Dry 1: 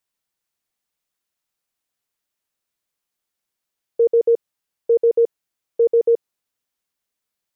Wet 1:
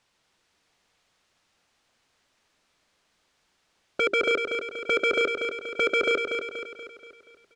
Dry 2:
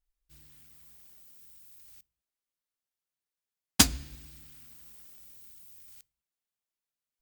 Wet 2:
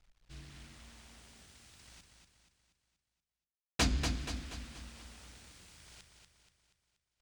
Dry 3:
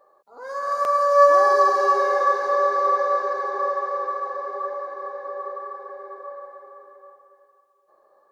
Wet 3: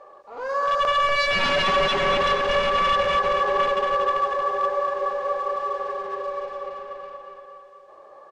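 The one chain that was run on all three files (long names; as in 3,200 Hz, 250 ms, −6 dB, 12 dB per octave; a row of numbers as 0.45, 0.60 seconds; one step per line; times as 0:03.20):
mu-law and A-law mismatch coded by mu
mains-hum notches 50/100/150/200/250/300/350/400 Hz
dynamic equaliser 440 Hz, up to +6 dB, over −28 dBFS, Q 3.5
in parallel at 0 dB: downward compressor 6 to 1, threshold −24 dBFS
on the sum: wave folding −15 dBFS
high-frequency loss of the air 100 metres
on a send: repeating echo 239 ms, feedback 49%, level −6 dB
on the sum: level −1.5 dB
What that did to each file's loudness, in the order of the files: −6.5, −11.5, −1.5 LU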